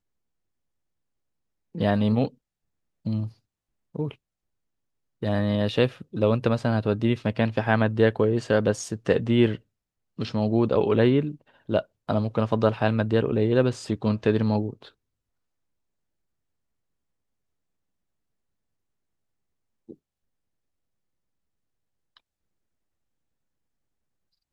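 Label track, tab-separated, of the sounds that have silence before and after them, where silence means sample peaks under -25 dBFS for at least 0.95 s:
1.780000	4.110000	sound
5.230000	14.700000	sound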